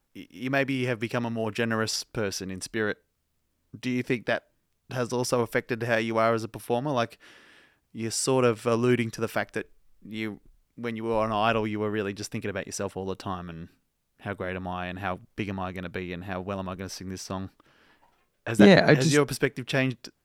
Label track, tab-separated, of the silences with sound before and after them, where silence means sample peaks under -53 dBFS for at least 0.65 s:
2.970000	3.730000	silence